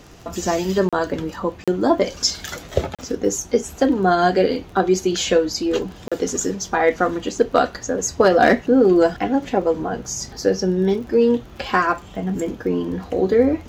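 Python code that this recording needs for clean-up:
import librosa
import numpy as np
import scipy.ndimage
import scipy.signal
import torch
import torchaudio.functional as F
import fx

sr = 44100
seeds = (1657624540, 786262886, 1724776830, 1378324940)

y = fx.fix_declip(x, sr, threshold_db=-4.5)
y = fx.fix_declick_ar(y, sr, threshold=6.5)
y = fx.fix_interpolate(y, sr, at_s=(0.89, 1.64, 2.95, 6.08), length_ms=36.0)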